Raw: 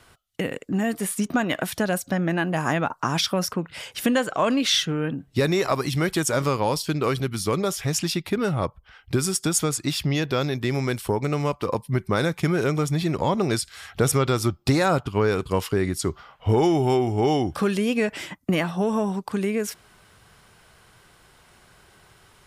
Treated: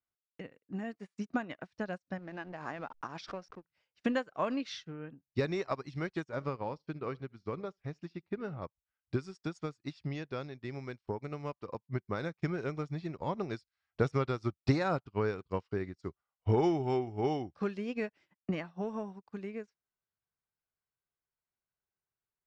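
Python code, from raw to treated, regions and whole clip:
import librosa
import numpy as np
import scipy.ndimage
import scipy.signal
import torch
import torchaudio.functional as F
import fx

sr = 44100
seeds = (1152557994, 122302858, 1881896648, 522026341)

y = fx.chain(x, sr, fx.bass_treble(bass_db=-8, treble_db=0),
    fx.backlash(play_db=-33.5),
    fx.pre_swell(db_per_s=33.0), at=(2.18, 3.65))
y = fx.chain(y, sr, fx.lowpass(hz=2500.0, slope=6),
    fx.echo_feedback(ms=72, feedback_pct=27, wet_db=-19), at=(6.24, 8.62))
y = scipy.signal.sosfilt(scipy.signal.butter(4, 5300.0, 'lowpass', fs=sr, output='sos'), y)
y = fx.peak_eq(y, sr, hz=3300.0, db=-6.5, octaves=0.41)
y = fx.upward_expand(y, sr, threshold_db=-42.0, expansion=2.5)
y = y * librosa.db_to_amplitude(-5.0)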